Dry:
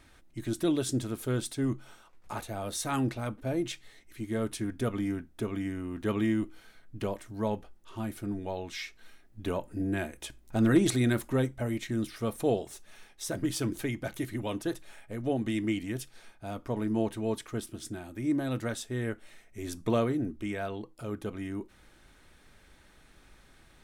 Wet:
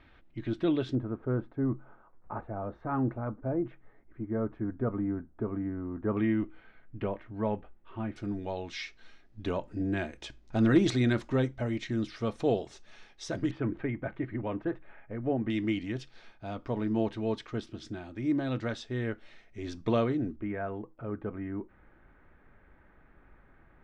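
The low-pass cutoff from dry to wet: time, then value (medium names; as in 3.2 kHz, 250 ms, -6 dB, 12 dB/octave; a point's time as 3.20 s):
low-pass 24 dB/octave
3.4 kHz
from 0.95 s 1.4 kHz
from 6.17 s 2.6 kHz
from 8.16 s 5.7 kHz
from 13.51 s 2.1 kHz
from 15.50 s 5 kHz
from 20.36 s 1.9 kHz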